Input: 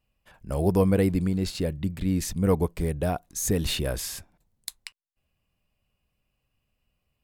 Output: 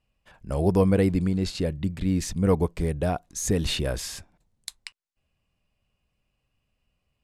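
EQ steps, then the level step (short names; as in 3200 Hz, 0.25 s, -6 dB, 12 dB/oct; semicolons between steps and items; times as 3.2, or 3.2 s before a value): LPF 8800 Hz 12 dB/oct; +1.0 dB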